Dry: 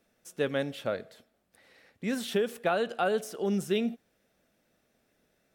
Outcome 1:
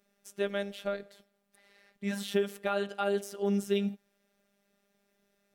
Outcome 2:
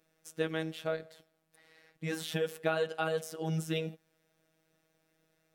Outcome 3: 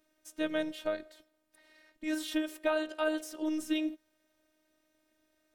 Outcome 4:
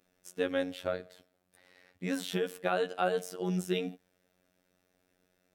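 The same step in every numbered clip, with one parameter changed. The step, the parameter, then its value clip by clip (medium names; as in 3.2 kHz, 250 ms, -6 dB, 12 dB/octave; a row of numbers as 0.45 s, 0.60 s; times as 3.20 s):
robot voice, frequency: 200 Hz, 160 Hz, 310 Hz, 91 Hz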